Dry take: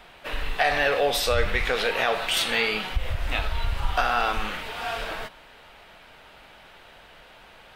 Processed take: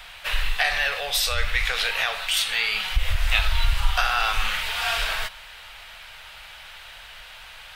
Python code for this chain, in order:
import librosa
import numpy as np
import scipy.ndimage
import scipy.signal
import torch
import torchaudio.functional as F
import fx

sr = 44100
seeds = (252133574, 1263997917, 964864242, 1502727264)

y = fx.tone_stack(x, sr, knobs='10-0-10')
y = fx.rider(y, sr, range_db=5, speed_s=0.5)
y = y * 10.0 ** (7.5 / 20.0)